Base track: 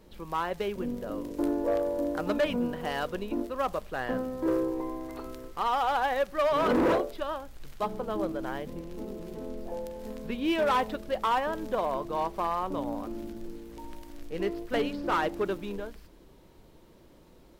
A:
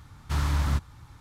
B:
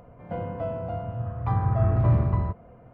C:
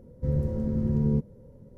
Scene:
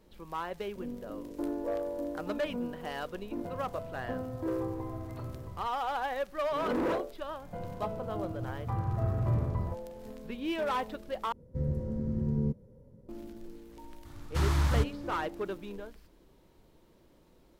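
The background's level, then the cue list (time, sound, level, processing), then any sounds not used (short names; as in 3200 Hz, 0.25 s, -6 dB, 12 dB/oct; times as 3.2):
base track -6 dB
3.14 add B -17.5 dB + vocal rider
7.22 add B -8.5 dB
11.32 replace with C -5.5 dB
14.05 add A -1.5 dB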